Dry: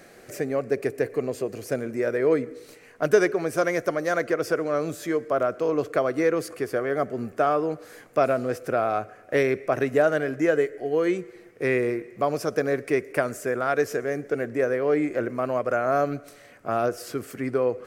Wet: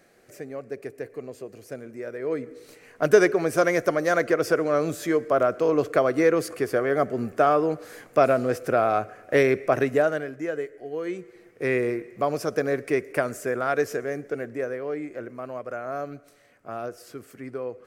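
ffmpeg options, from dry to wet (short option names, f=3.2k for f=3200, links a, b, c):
-af "volume=10dB,afade=t=in:st=2.19:d=1:silence=0.251189,afade=t=out:st=9.73:d=0.59:silence=0.298538,afade=t=in:st=11.04:d=0.72:silence=0.421697,afade=t=out:st=13.76:d=1.22:silence=0.375837"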